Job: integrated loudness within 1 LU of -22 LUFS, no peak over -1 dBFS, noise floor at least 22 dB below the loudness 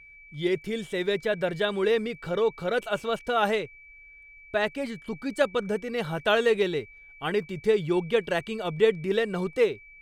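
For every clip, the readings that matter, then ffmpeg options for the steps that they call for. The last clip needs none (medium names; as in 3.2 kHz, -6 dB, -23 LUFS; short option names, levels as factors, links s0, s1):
steady tone 2.3 kHz; tone level -48 dBFS; loudness -27.0 LUFS; peak level -9.0 dBFS; loudness target -22.0 LUFS
-> -af "bandreject=f=2300:w=30"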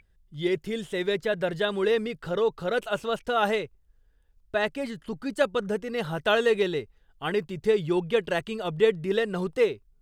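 steady tone not found; loudness -27.0 LUFS; peak level -9.0 dBFS; loudness target -22.0 LUFS
-> -af "volume=1.78"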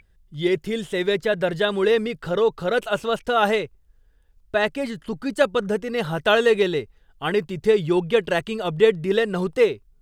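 loudness -22.0 LUFS; peak level -4.0 dBFS; noise floor -59 dBFS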